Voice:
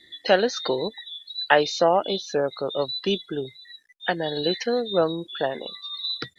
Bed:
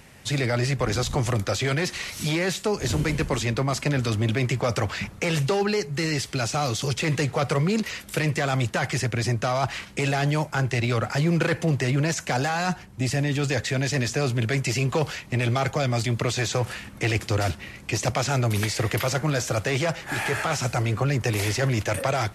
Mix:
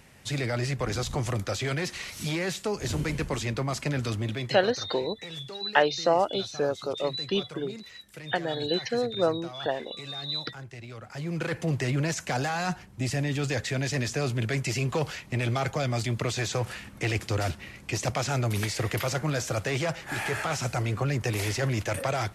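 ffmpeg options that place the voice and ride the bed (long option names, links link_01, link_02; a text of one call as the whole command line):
ffmpeg -i stem1.wav -i stem2.wav -filter_complex "[0:a]adelay=4250,volume=-3.5dB[link_01];[1:a]volume=9.5dB,afade=type=out:start_time=4.09:duration=0.64:silence=0.211349,afade=type=in:start_time=11.03:duration=0.74:silence=0.188365[link_02];[link_01][link_02]amix=inputs=2:normalize=0" out.wav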